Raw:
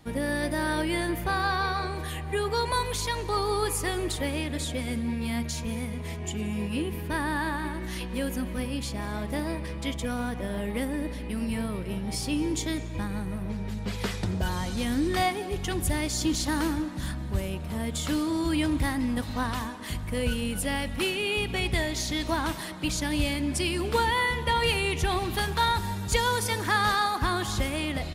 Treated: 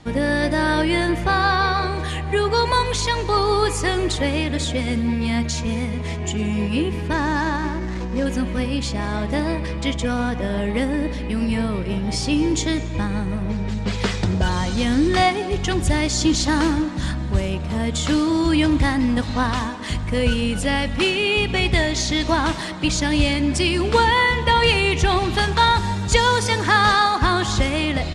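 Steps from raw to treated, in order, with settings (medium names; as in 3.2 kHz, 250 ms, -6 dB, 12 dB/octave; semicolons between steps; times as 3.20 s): 7.13–8.26 s: median filter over 15 samples; low-pass 7.9 kHz 24 dB/octave; trim +8.5 dB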